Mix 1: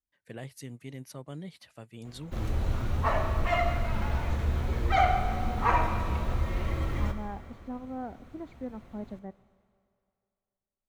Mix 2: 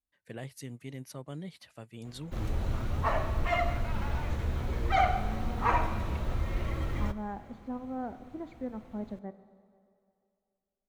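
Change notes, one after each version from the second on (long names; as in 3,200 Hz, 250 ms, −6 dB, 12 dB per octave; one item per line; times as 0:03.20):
second voice: send +9.0 dB
background: send −9.0 dB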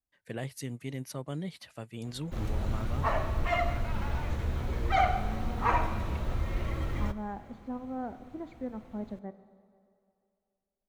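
first voice +4.5 dB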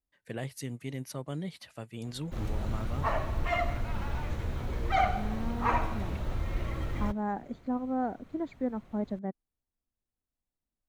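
second voice +7.0 dB
reverb: off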